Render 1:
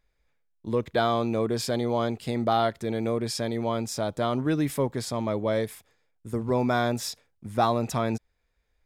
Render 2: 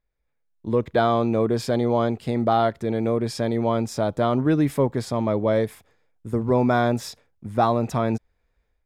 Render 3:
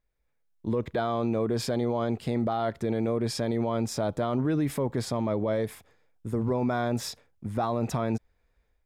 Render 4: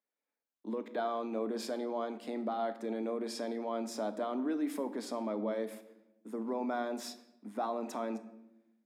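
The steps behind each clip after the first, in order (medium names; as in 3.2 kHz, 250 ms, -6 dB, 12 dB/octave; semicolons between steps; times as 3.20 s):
treble shelf 2.4 kHz -9.5 dB; level rider gain up to 13 dB; trim -6.5 dB
peak limiter -19.5 dBFS, peak gain reduction 10 dB
rippled Chebyshev high-pass 200 Hz, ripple 3 dB; simulated room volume 330 m³, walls mixed, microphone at 0.37 m; trim -6 dB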